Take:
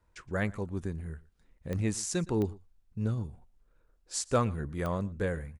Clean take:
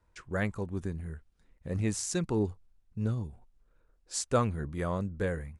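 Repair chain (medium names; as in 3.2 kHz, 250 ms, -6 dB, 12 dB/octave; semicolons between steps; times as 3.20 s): clip repair -17.5 dBFS; de-click; inverse comb 117 ms -22.5 dB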